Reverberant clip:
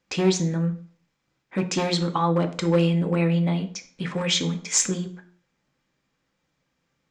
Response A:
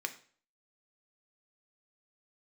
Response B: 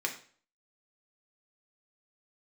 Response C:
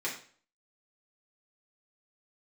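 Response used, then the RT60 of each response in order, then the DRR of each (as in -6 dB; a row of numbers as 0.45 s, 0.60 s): A; 0.45 s, 0.45 s, 0.45 s; 6.0 dB, 1.0 dB, -6.0 dB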